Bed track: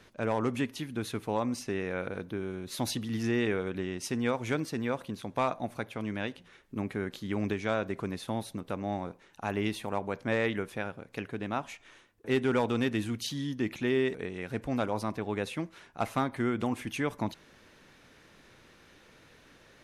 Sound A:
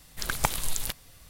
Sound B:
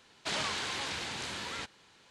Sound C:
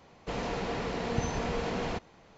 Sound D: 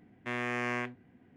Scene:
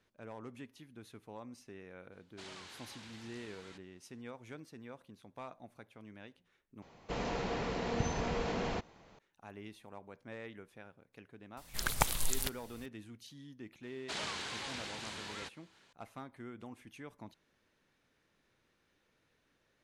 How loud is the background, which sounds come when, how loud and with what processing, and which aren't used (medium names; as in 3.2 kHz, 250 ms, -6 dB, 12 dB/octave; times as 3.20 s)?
bed track -18 dB
2.12 s: add B -17 dB
6.82 s: replace with C -3 dB
11.57 s: add A -4 dB
13.83 s: add B -6 dB
not used: D